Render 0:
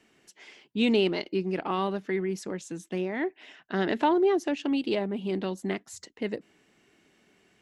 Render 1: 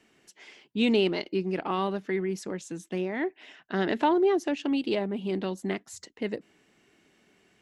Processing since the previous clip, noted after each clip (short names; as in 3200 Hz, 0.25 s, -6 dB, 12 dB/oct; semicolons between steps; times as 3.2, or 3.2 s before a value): nothing audible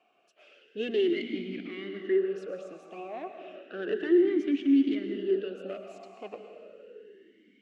one diode to ground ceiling -28 dBFS; reverb RT60 2.7 s, pre-delay 0.1 s, DRR 4.5 dB; vowel sweep a-i 0.32 Hz; gain +8.5 dB